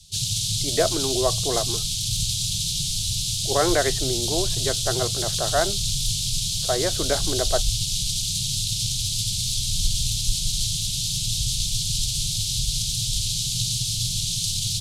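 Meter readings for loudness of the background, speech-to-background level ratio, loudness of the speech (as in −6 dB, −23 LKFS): −23.5 LKFS, −3.5 dB, −27.0 LKFS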